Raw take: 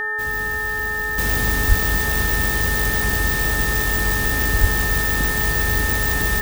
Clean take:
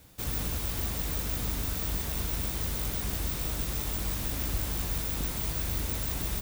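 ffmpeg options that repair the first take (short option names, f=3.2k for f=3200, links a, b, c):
-filter_complex "[0:a]bandreject=f=426.2:t=h:w=4,bandreject=f=852.4:t=h:w=4,bandreject=f=1.2786k:t=h:w=4,bandreject=f=1.7048k:t=h:w=4,bandreject=f=1.8k:w=30,asplit=3[a][b][c];[a]afade=t=out:st=1.68:d=0.02[d];[b]highpass=f=140:w=0.5412,highpass=f=140:w=1.3066,afade=t=in:st=1.68:d=0.02,afade=t=out:st=1.8:d=0.02[e];[c]afade=t=in:st=1.8:d=0.02[f];[d][e][f]amix=inputs=3:normalize=0,asplit=3[g][h][i];[g]afade=t=out:st=4.6:d=0.02[j];[h]highpass=f=140:w=0.5412,highpass=f=140:w=1.3066,afade=t=in:st=4.6:d=0.02,afade=t=out:st=4.72:d=0.02[k];[i]afade=t=in:st=4.72:d=0.02[l];[j][k][l]amix=inputs=3:normalize=0,asetnsamples=n=441:p=0,asendcmd='1.18 volume volume -10.5dB',volume=0dB"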